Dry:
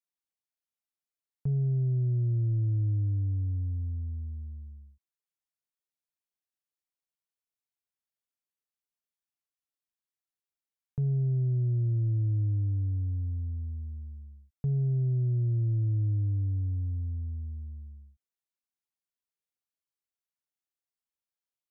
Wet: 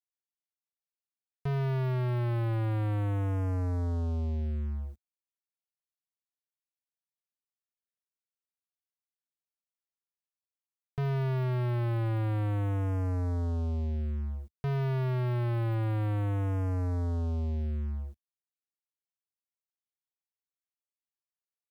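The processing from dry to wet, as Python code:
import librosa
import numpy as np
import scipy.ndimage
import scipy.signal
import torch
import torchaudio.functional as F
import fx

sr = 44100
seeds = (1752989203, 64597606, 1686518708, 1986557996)

y = fx.leveller(x, sr, passes=5)
y = y * 10.0 ** (-4.0 / 20.0)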